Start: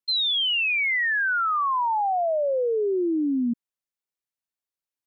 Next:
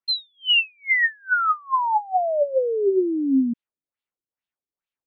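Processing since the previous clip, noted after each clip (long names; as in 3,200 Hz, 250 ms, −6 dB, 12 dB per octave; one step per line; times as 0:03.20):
auto-filter low-pass sine 2.3 Hz 290–3,400 Hz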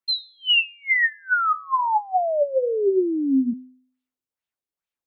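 hum removal 255.2 Hz, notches 38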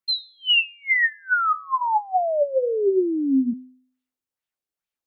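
notch filter 1,000 Hz, Q 28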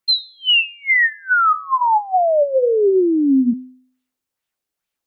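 brickwall limiter −17 dBFS, peak gain reduction 5.5 dB
level +7.5 dB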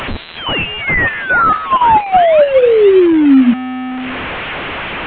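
linear delta modulator 16 kbit/s, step −22 dBFS
level +7 dB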